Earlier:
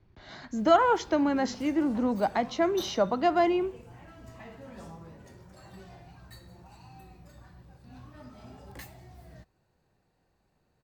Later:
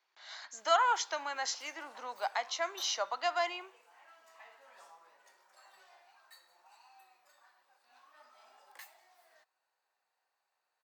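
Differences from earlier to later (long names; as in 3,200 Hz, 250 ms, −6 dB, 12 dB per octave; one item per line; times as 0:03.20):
speech: remove low-pass filter 1,800 Hz 6 dB per octave
master: add four-pole ladder high-pass 670 Hz, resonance 20%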